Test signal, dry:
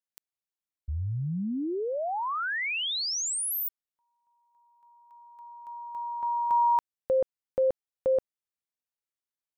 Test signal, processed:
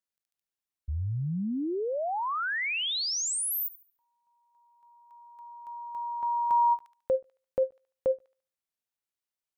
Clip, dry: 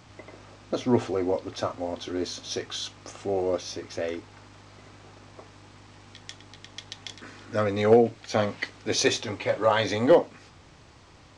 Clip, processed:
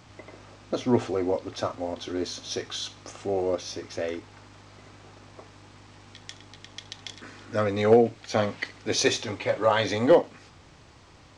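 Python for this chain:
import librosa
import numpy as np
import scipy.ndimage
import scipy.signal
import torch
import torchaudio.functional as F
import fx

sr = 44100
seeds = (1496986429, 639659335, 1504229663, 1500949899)

y = fx.echo_wet_highpass(x, sr, ms=72, feedback_pct=32, hz=2000.0, wet_db=-18)
y = fx.end_taper(y, sr, db_per_s=440.0)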